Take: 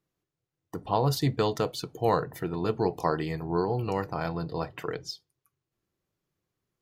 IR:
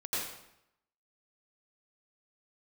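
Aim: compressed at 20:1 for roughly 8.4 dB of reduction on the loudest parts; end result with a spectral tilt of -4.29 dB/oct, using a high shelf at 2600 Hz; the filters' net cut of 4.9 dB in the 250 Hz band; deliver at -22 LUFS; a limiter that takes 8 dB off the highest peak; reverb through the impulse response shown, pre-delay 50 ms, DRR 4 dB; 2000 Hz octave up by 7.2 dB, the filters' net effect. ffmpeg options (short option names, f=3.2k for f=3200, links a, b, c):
-filter_complex "[0:a]equalizer=f=250:t=o:g=-8.5,equalizer=f=2k:t=o:g=7,highshelf=f=2.6k:g=6,acompressor=threshold=-27dB:ratio=20,alimiter=limit=-21dB:level=0:latency=1,asplit=2[a][b];[1:a]atrim=start_sample=2205,adelay=50[c];[b][c]afir=irnorm=-1:irlink=0,volume=-9dB[d];[a][d]amix=inputs=2:normalize=0,volume=11.5dB"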